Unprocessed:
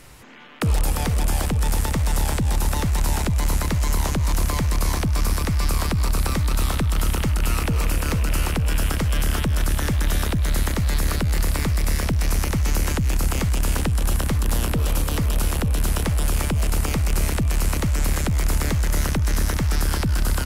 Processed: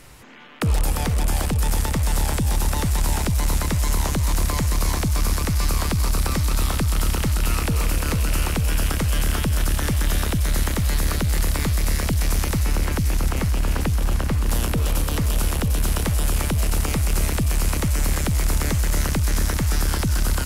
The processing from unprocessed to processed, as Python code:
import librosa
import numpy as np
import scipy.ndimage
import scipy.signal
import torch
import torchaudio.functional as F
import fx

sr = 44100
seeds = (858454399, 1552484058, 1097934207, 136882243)

y = fx.bass_treble(x, sr, bass_db=0, treble_db=-12, at=(12.64, 14.48))
y = fx.echo_wet_highpass(y, sr, ms=751, feedback_pct=69, hz=3800.0, wet_db=-4.5)